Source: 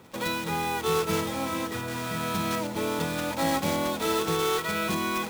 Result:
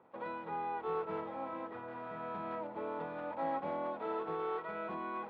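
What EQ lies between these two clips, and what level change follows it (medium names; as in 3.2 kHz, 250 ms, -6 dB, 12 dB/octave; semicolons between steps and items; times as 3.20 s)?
band-pass filter 780 Hz, Q 1.1; distance through air 430 m; -5.0 dB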